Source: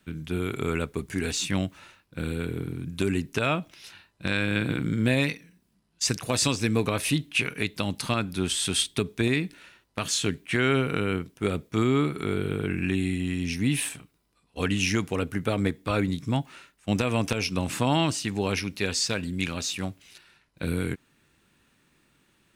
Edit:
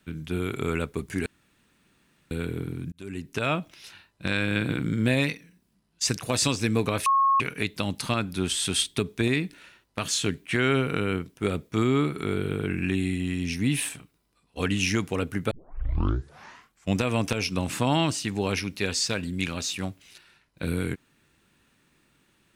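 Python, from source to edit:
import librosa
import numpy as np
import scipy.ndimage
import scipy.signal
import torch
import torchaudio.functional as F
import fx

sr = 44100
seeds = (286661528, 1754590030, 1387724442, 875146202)

y = fx.edit(x, sr, fx.room_tone_fill(start_s=1.26, length_s=1.05),
    fx.fade_in_span(start_s=2.92, length_s=0.62),
    fx.bleep(start_s=7.06, length_s=0.34, hz=1090.0, db=-17.5),
    fx.tape_start(start_s=15.51, length_s=1.48), tone=tone)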